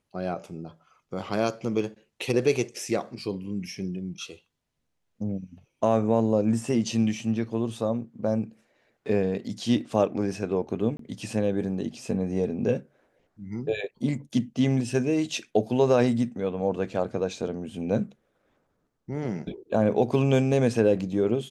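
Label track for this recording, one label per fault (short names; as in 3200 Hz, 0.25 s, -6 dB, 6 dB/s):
10.970000	10.990000	gap 23 ms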